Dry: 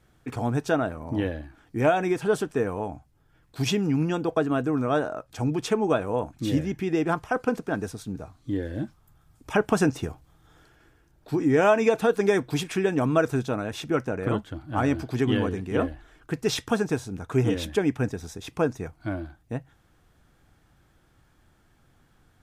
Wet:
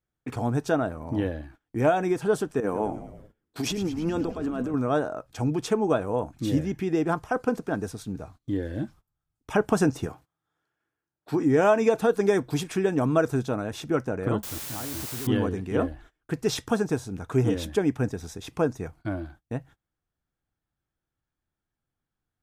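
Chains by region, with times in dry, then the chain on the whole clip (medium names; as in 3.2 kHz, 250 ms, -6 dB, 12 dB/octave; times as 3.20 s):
2.60–4.74 s: resonant low shelf 170 Hz -9 dB, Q 1.5 + compressor with a negative ratio -28 dBFS + frequency-shifting echo 106 ms, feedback 61%, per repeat -85 Hz, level -12.5 dB
10.06–11.43 s: high-pass 130 Hz + peaking EQ 1.3 kHz +5 dB 1.7 oct
14.43–15.27 s: level held to a coarse grid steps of 18 dB + word length cut 6-bit, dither triangular
whole clip: gate -47 dBFS, range -25 dB; dynamic bell 2.5 kHz, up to -5 dB, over -43 dBFS, Q 1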